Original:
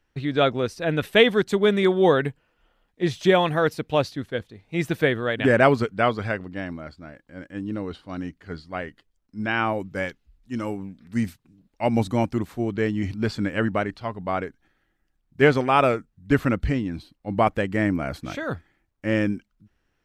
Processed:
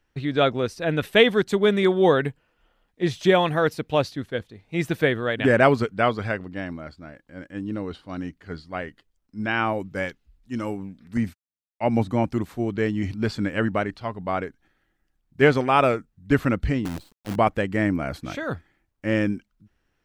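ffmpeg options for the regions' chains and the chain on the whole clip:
ffmpeg -i in.wav -filter_complex "[0:a]asettb=1/sr,asplit=3[link_01][link_02][link_03];[link_01]atrim=end=11.174[link_04];[link_02]atrim=start=11.17:end=12.27,asetpts=PTS-STARTPTS,afade=type=in:duration=0.004:curve=qsin,afade=type=out:start_time=1.096:duration=0.004:curve=qsin,acrossover=split=2800[link_05][link_06];[link_06]acompressor=threshold=-51dB:ratio=4:attack=1:release=60[link_07];[link_05][link_07]amix=inputs=2:normalize=0,highpass=frequency=52:width=0.5412,highpass=frequency=52:width=1.3066,agate=range=-55dB:threshold=-44dB:ratio=16:release=100:detection=peak[link_08];[link_03]atrim=start=12.266[link_09];[link_04][link_08]acrossfade=duration=0.004:curve1=hsin:curve2=qsin[link_10];[link_10][link_09]acrossfade=duration=0.004:curve1=qsin:curve2=hsin,asettb=1/sr,asplit=3[link_11][link_12][link_13];[link_11]atrim=end=16.854[link_14];[link_12]atrim=start=16.85:end=17.36,asetpts=PTS-STARTPTS,afade=type=in:duration=0.004:curve=qsin,afade=type=out:start_time=0.506:duration=0.004:curve=qsin,acrossover=split=390|3000[link_15][link_16][link_17];[link_16]acompressor=threshold=-51dB:ratio=2:attack=3.2:release=140:knee=2.83:detection=peak[link_18];[link_15][link_18][link_17]amix=inputs=3:normalize=0,acrusher=bits=6:dc=4:mix=0:aa=0.000001[link_19];[link_13]atrim=start=17.356[link_20];[link_14][link_19]acrossfade=duration=0.004:curve1=hsin:curve2=qsin[link_21];[link_21][link_20]acrossfade=duration=0.004:curve1=qsin:curve2=hsin" out.wav

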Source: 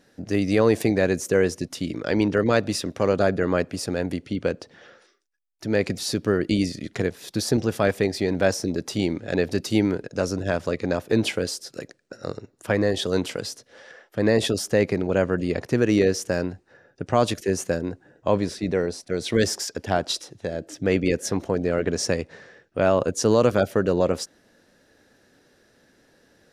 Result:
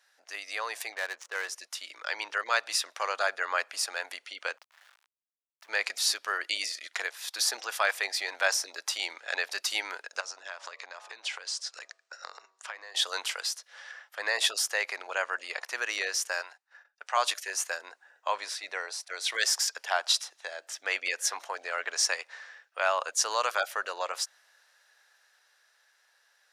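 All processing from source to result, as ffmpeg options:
ffmpeg -i in.wav -filter_complex "[0:a]asettb=1/sr,asplit=3[link_01][link_02][link_03];[link_01]atrim=end=0.924[link_04];[link_02]atrim=start=0.92:end=1.48,asetpts=PTS-STARTPTS,afade=type=in:duration=0.004:curve=qsin,afade=type=out:start_time=0.556:duration=0.004:curve=qsin,bandreject=frequency=2500:width=15,adynamicsmooth=sensitivity=5.5:basefreq=940[link_05];[link_03]atrim=start=1.476[link_06];[link_04][link_05]acrossfade=duration=0.004:curve1=hsin:curve2=qsin[link_07];[link_07][link_06]acrossfade=duration=0.004:curve1=qsin:curve2=hsin,asettb=1/sr,asplit=3[link_08][link_09][link_10];[link_08]atrim=end=4.574[link_11];[link_09]atrim=start=4.57:end=5.69,asetpts=PTS-STARTPTS,afade=type=in:duration=0.004:curve=qsin,afade=type=out:start_time=1.116:duration=0.004:curve=qsin,acompressor=threshold=-51dB:ratio=2.5:attack=3.2:release=140:knee=1:detection=peak,aeval=exprs='val(0)*gte(abs(val(0)),0.00376)':channel_layout=same,highshelf=frequency=3700:gain=-9.5[link_12];[link_10]atrim=start=5.686[link_13];[link_11][link_12]acrossfade=duration=0.004:curve1=hsin:curve2=qsin[link_14];[link_14][link_13]acrossfade=duration=0.004:curve1=qsin:curve2=hsin,asettb=1/sr,asplit=3[link_15][link_16][link_17];[link_15]atrim=end=10.204[link_18];[link_16]atrim=start=10.2:end=12.95,asetpts=PTS-STARTPTS,afade=type=in:duration=0.004:curve=qsin,afade=type=out:start_time=2.746:duration=0.004:curve=qsin,lowpass=frequency=7900:width=0.5412,lowpass=frequency=7900:width=1.3066,bandreject=frequency=95.38:width_type=h:width=4,bandreject=frequency=190.76:width_type=h:width=4,bandreject=frequency=286.14:width_type=h:width=4,bandreject=frequency=381.52:width_type=h:width=4,bandreject=frequency=476.9:width_type=h:width=4,bandreject=frequency=572.28:width_type=h:width=4,bandreject=frequency=667.66:width_type=h:width=4,bandreject=frequency=763.04:width_type=h:width=4,bandreject=frequency=858.42:width_type=h:width=4,bandreject=frequency=953.8:width_type=h:width=4,bandreject=frequency=1049.18:width_type=h:width=4,bandreject=frequency=1144.56:width_type=h:width=4,bandreject=frequency=1239.94:width_type=h:width=4,acompressor=threshold=-30dB:ratio=16:attack=3.2:release=140:knee=1:detection=peak[link_19];[link_17]atrim=start=12.946[link_20];[link_18][link_19]acrossfade=duration=0.004:curve1=hsin:curve2=qsin[link_21];[link_21][link_20]acrossfade=duration=0.004:curve1=qsin:curve2=hsin,asettb=1/sr,asplit=3[link_22][link_23][link_24];[link_22]atrim=end=16.414[link_25];[link_23]atrim=start=16.41:end=17.17,asetpts=PTS-STARTPTS,afade=type=in:duration=0.004:curve=qsin,afade=type=out:start_time=0.756:duration=0.004:curve=qsin,highpass=570,agate=range=-15dB:threshold=-57dB:ratio=16:release=100:detection=peak[link_26];[link_24]atrim=start=17.166[link_27];[link_25][link_26]acrossfade=duration=0.004:curve1=hsin:curve2=qsin[link_28];[link_28][link_27]acrossfade=duration=0.004:curve1=qsin:curve2=hsin,dynaudnorm=framelen=270:gausssize=17:maxgain=11.5dB,highpass=frequency=890:width=0.5412,highpass=frequency=890:width=1.3066,volume=-3.5dB" out.wav

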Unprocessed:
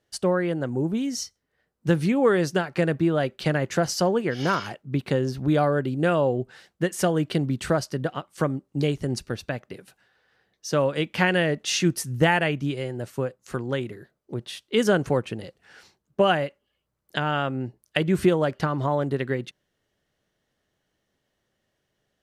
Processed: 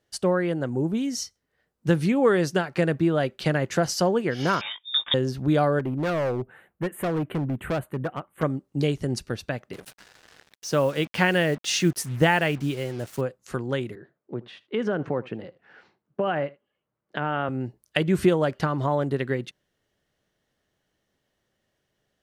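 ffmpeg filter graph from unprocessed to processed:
ffmpeg -i in.wav -filter_complex "[0:a]asettb=1/sr,asplit=3[link_01][link_02][link_03];[link_01]atrim=end=4.614[link_04];[link_02]atrim=start=4.61:end=5.14,asetpts=PTS-STARTPTS,afade=type=in:duration=0.004:curve=qsin,afade=type=out:start_time=0.526:duration=0.004:curve=qsin,asplit=2[link_05][link_06];[link_06]adelay=20,volume=-6.5dB[link_07];[link_05][link_07]amix=inputs=2:normalize=0,atrim=end_sample=23373,lowpass=frequency=3200:width_type=q:width=0.5098,lowpass=frequency=3200:width_type=q:width=0.6013,lowpass=frequency=3200:width_type=q:width=0.9,lowpass=frequency=3200:width_type=q:width=2.563,afreqshift=-3800[link_08];[link_03]atrim=start=5.136[link_09];[link_04][link_08]acrossfade=duration=0.004:curve1=hsin:curve2=qsin[link_10];[link_10][link_09]acrossfade=duration=0.004:curve1=qsin:curve2=hsin,asettb=1/sr,asplit=3[link_11][link_12][link_13];[link_11]atrim=end=5.794[link_14];[link_12]atrim=start=5.79:end=8.43,asetpts=PTS-STARTPTS,afade=type=in:duration=0.004:curve=qsin,afade=type=out:start_time=2.636:duration=0.004:curve=qsin,asuperstop=centerf=5300:order=4:qfactor=0.58,asoftclip=type=hard:threshold=-22.5dB[link_15];[link_13]atrim=start=8.426[link_16];[link_14][link_15]acrossfade=duration=0.004:curve1=hsin:curve2=qsin[link_17];[link_17][link_16]acrossfade=duration=0.004:curve1=qsin:curve2=hsin,asettb=1/sr,asplit=3[link_18][link_19][link_20];[link_18]atrim=end=9.734[link_21];[link_19]atrim=start=9.73:end=13.21,asetpts=PTS-STARTPTS,afade=type=in:duration=0.004:curve=qsin,afade=type=out:start_time=3.476:duration=0.004:curve=qsin,acompressor=mode=upward:threshold=-33dB:ratio=2.5:attack=3.2:release=140:knee=2.83:detection=peak,acrusher=bits=6:mix=0:aa=0.5[link_22];[link_20]atrim=start=13.206[link_23];[link_21][link_22]acrossfade=duration=0.004:curve1=hsin:curve2=qsin[link_24];[link_24][link_23]acrossfade=duration=0.004:curve1=qsin:curve2=hsin,asettb=1/sr,asplit=3[link_25][link_26][link_27];[link_25]atrim=end=13.954[link_28];[link_26]atrim=start=13.95:end=17.49,asetpts=PTS-STARTPTS,afade=type=in:duration=0.004:curve=qsin,afade=type=out:start_time=3.536:duration=0.004:curve=qsin,acompressor=threshold=-20dB:ratio=6:attack=3.2:release=140:knee=1:detection=peak,highpass=140,lowpass=2100,aecho=1:1:76:0.0891,atrim=end_sample=156114[link_29];[link_27]atrim=start=17.486[link_30];[link_28][link_29]acrossfade=duration=0.004:curve1=hsin:curve2=qsin[link_31];[link_31][link_30]acrossfade=duration=0.004:curve1=qsin:curve2=hsin" out.wav

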